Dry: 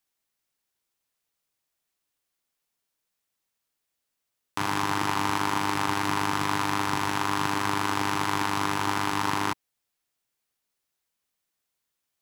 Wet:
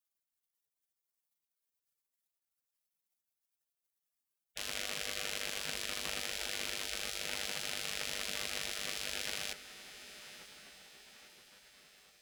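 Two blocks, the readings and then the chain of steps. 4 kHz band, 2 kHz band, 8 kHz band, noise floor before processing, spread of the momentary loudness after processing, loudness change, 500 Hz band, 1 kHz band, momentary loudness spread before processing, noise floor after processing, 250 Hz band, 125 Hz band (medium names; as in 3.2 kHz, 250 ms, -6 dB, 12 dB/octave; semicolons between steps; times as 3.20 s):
-3.5 dB, -10.5 dB, -3.5 dB, -82 dBFS, 17 LU, -10.5 dB, -12.0 dB, -24.5 dB, 2 LU, under -85 dBFS, -24.5 dB, -23.5 dB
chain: crackle 550 per s -54 dBFS; echo that smears into a reverb 1007 ms, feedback 52%, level -14 dB; spectral gate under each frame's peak -15 dB weak; trim -3.5 dB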